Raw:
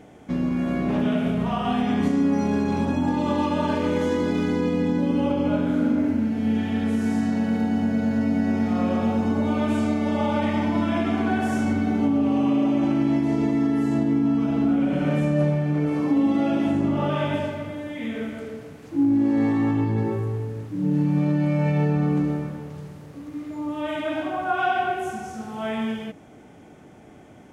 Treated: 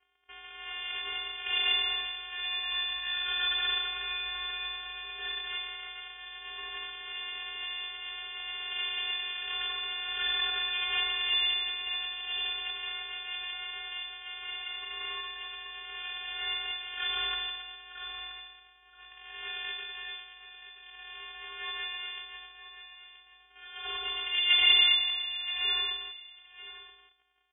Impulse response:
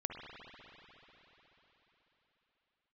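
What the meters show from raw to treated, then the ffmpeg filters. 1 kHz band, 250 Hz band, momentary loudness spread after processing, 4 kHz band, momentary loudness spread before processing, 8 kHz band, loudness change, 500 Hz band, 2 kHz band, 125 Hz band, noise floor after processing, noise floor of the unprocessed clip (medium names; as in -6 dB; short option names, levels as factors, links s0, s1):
-14.0 dB, under -40 dB, 19 LU, +14.5 dB, 10 LU, no reading, -7.0 dB, -27.0 dB, +1.5 dB, under -35 dB, -58 dBFS, -47 dBFS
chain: -filter_complex "[0:a]aemphasis=mode=production:type=riaa,afftfilt=real='re*(1-between(b*sr/4096,240,600))':imag='im*(1-between(b*sr/4096,240,600))':win_size=4096:overlap=0.75,lowshelf=f=580:t=q:w=3:g=-9,aeval=exprs='max(val(0),0)':c=same,acrusher=bits=3:mode=log:mix=0:aa=0.000001,afftfilt=real='hypot(re,im)*cos(PI*b)':imag='0':win_size=512:overlap=0.75,aeval=exprs='sgn(val(0))*max(abs(val(0))-0.00562,0)':c=same,asplit=2[s0][s1];[s1]aecho=0:1:977:0.237[s2];[s0][s2]amix=inputs=2:normalize=0,lowpass=f=3000:t=q:w=0.5098,lowpass=f=3000:t=q:w=0.6013,lowpass=f=3000:t=q:w=0.9,lowpass=f=3000:t=q:w=2.563,afreqshift=-3500,volume=1.19"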